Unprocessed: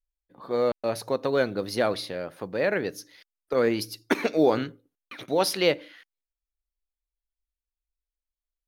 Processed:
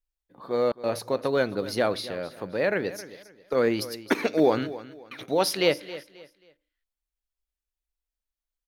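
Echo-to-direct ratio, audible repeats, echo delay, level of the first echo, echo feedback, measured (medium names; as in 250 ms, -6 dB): -15.5 dB, 2, 268 ms, -16.0 dB, 30%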